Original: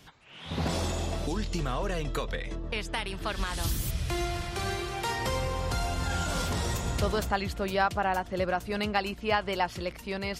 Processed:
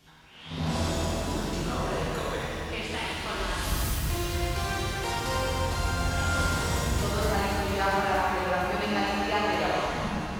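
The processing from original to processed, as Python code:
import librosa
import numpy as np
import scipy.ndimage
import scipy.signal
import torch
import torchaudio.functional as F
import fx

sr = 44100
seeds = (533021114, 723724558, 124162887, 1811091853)

y = fx.tape_stop_end(x, sr, length_s=0.93)
y = fx.rev_shimmer(y, sr, seeds[0], rt60_s=2.5, semitones=7, shimmer_db=-8, drr_db=-7.0)
y = y * librosa.db_to_amplitude(-6.0)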